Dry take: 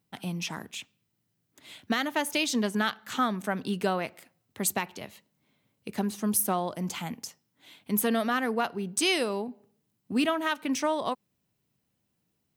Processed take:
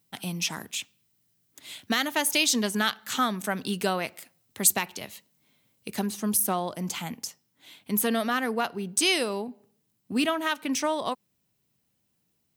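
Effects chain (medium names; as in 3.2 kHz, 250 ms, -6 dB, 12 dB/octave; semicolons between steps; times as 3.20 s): de-esser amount 35%; treble shelf 3.1 kHz +10.5 dB, from 6.06 s +5.5 dB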